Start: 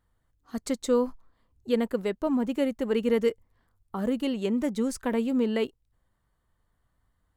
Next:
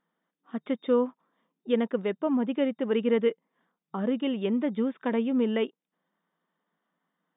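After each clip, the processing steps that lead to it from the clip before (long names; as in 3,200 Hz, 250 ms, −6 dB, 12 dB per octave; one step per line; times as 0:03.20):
brick-wall band-pass 160–3,700 Hz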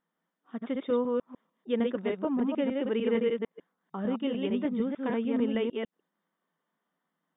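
delay that plays each chunk backwards 150 ms, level −2.5 dB
level −4 dB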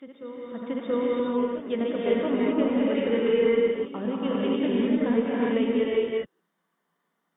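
backwards echo 678 ms −12.5 dB
reverb whose tail is shaped and stops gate 420 ms rising, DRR −4.5 dB
harmonic generator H 4 −39 dB, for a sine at −10.5 dBFS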